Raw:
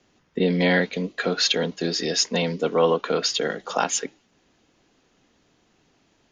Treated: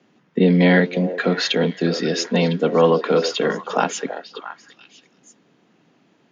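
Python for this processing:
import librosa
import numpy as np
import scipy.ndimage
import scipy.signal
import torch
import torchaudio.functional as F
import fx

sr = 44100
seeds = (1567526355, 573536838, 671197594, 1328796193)

y = scipy.signal.sosfilt(scipy.signal.butter(4, 160.0, 'highpass', fs=sr, output='sos'), x)
y = fx.bass_treble(y, sr, bass_db=8, treble_db=-10)
y = fx.echo_stepped(y, sr, ms=335, hz=500.0, octaves=1.4, feedback_pct=70, wet_db=-7.0)
y = F.gain(torch.from_numpy(y), 3.5).numpy()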